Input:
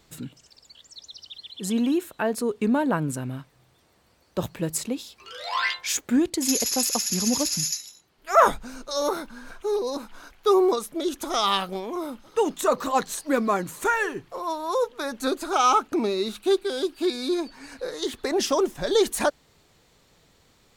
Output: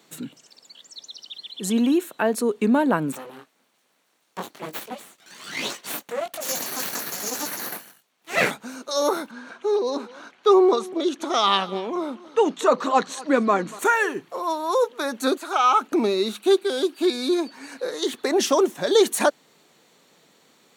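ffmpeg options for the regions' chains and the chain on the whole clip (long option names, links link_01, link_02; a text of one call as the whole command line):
ffmpeg -i in.wav -filter_complex "[0:a]asettb=1/sr,asplit=3[link_01][link_02][link_03];[link_01]atrim=end=3.124[link_04];[link_02]atrim=start=3.12:end=8.51,asetpts=PTS-STARTPTS,afade=type=in:duration=0.004:curve=qsin,afade=type=out:start_time=5.386:duration=0.004:curve=qsin,highpass=frequency=160:poles=1,flanger=delay=19:depth=3.4:speed=1.2,aeval=exprs='abs(val(0))':channel_layout=same[link_05];[link_03]atrim=start=8.506[link_06];[link_04][link_05]acrossfade=duration=0.004:curve1=hsin:curve2=qsin[link_07];[link_07][link_06]acrossfade=duration=0.004:curve1=qsin:curve2=hsin,asettb=1/sr,asplit=3[link_08][link_09][link_10];[link_08]atrim=end=9.314[link_11];[link_09]atrim=start=9.31:end=13.79,asetpts=PTS-STARTPTS,afade=type=in:duration=0.004:curve=qsin,afade=type=out:start_time=4.476:duration=0.004:curve=qsin,lowpass=5500,aecho=1:1:238:0.1,atrim=end_sample=197568[link_12];[link_10]atrim=start=13.786[link_13];[link_11][link_12]acrossfade=duration=0.004:curve1=hsin:curve2=qsin[link_14];[link_14][link_13]acrossfade=duration=0.004:curve1=qsin:curve2=hsin,asettb=1/sr,asplit=3[link_15][link_16][link_17];[link_15]atrim=end=15.374[link_18];[link_16]atrim=start=15.37:end=15.81,asetpts=PTS-STARTPTS,afade=type=in:duration=0.004:curve=qsin,afade=type=out:start_time=0.436:duration=0.004:curve=qsin,acrossover=split=3500[link_19][link_20];[link_20]acompressor=threshold=-43dB:ratio=4:attack=1:release=60[link_21];[link_19][link_21]amix=inputs=2:normalize=0,equalizer=frequency=250:width=0.52:gain=-10.5[link_22];[link_17]atrim=start=15.806[link_23];[link_18][link_22]acrossfade=duration=0.004:curve1=hsin:curve2=qsin[link_24];[link_24][link_23]acrossfade=duration=0.004:curve1=qsin:curve2=hsin,highpass=frequency=180:width=0.5412,highpass=frequency=180:width=1.3066,bandreject=frequency=5000:width=11,volume=3.5dB" out.wav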